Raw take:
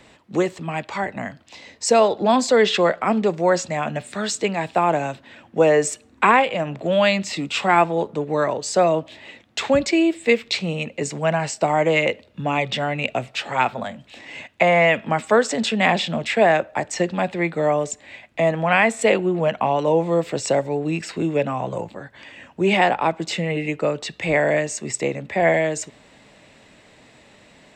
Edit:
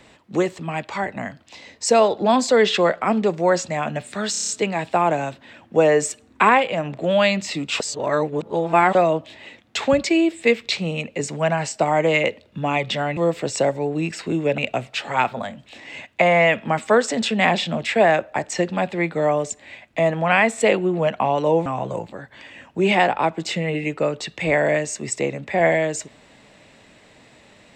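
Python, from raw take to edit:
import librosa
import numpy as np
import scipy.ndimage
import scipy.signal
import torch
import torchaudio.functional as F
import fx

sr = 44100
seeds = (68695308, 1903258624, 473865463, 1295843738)

y = fx.edit(x, sr, fx.stutter(start_s=4.31, slice_s=0.03, count=7),
    fx.reverse_span(start_s=7.62, length_s=1.15),
    fx.move(start_s=20.07, length_s=1.41, to_s=12.99), tone=tone)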